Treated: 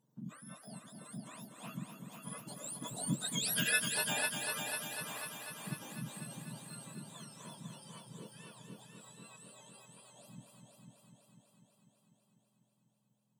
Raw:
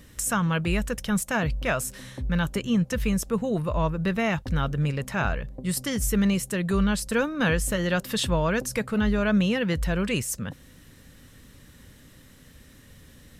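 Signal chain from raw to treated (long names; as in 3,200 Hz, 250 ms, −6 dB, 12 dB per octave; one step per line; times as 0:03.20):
frequency axis turned over on the octave scale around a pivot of 1,300 Hz
source passing by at 0:03.62, 9 m/s, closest 1.5 metres
on a send: echo machine with several playback heads 248 ms, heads first and second, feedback 65%, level −7.5 dB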